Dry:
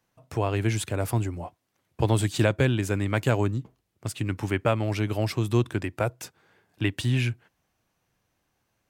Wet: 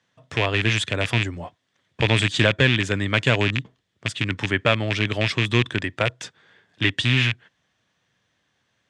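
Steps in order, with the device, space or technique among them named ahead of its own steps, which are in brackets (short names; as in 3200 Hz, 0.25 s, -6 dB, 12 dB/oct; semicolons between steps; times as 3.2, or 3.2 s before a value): car door speaker with a rattle (rattling part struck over -26 dBFS, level -17 dBFS; speaker cabinet 94–7700 Hz, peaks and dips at 340 Hz -4 dB, 800 Hz -4 dB, 1800 Hz +8 dB, 3400 Hz +10 dB); gain +3.5 dB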